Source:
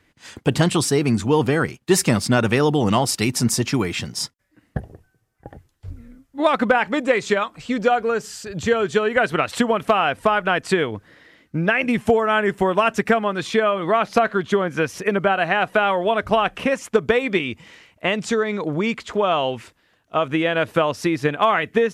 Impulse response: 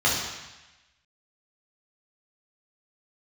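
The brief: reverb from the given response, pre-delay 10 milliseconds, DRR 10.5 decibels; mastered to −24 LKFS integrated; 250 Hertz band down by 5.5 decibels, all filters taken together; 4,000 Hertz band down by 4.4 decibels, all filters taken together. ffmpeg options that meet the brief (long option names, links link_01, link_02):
-filter_complex "[0:a]equalizer=frequency=250:width_type=o:gain=-7.5,equalizer=frequency=4000:width_type=o:gain=-6.5,asplit=2[link_01][link_02];[1:a]atrim=start_sample=2205,adelay=10[link_03];[link_02][link_03]afir=irnorm=-1:irlink=0,volume=-26.5dB[link_04];[link_01][link_04]amix=inputs=2:normalize=0,volume=-2dB"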